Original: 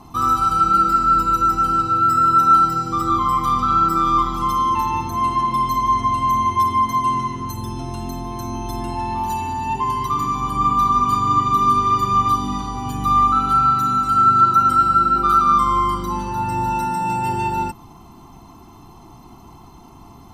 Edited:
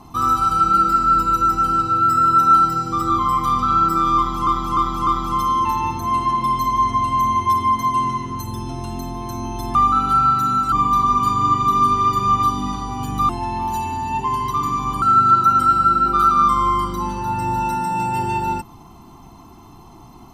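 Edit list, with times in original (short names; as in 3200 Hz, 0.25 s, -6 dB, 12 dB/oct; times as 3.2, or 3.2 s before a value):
4.17–4.47 loop, 4 plays
8.85–10.58 swap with 13.15–14.12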